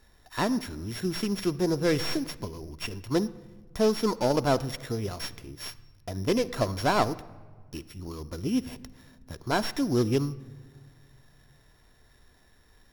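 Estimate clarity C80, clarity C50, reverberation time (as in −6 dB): 19.5 dB, 17.5 dB, 1.5 s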